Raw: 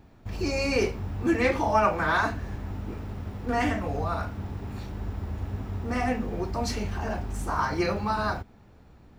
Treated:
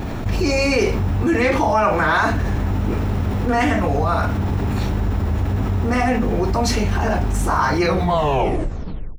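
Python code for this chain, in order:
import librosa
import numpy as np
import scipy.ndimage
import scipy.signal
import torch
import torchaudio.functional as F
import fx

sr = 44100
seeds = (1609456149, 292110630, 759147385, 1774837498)

y = fx.tape_stop_end(x, sr, length_s=1.34)
y = fx.notch(y, sr, hz=4700.0, q=19.0)
y = fx.env_flatten(y, sr, amount_pct=70)
y = y * librosa.db_to_amplitude(3.5)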